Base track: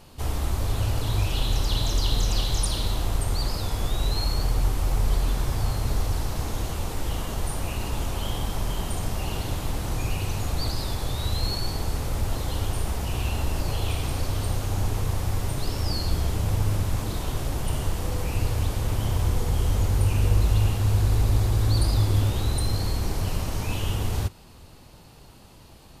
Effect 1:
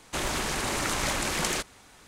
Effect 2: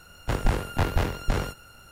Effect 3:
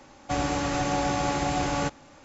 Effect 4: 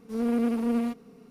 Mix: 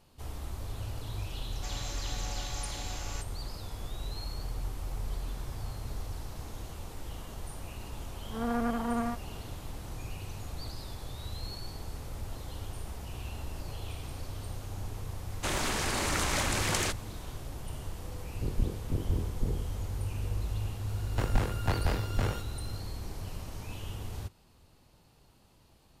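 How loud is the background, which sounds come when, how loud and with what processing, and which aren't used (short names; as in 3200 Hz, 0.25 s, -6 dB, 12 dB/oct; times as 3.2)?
base track -13 dB
1.33 add 3 -17.5 dB + tilt +4.5 dB/oct
8.22 add 4 -7 dB + band shelf 1100 Hz +13 dB
15.3 add 1 -2 dB
18.13 add 2 -6 dB + inverse Chebyshev low-pass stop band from 890 Hz
20.89 add 2 -5.5 dB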